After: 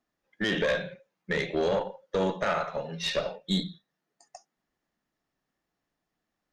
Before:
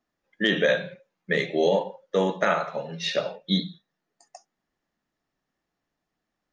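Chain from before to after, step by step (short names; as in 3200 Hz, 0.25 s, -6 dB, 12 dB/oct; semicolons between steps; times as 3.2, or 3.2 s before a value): limiter -13.5 dBFS, peak gain reduction 4 dB; tube stage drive 19 dB, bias 0.4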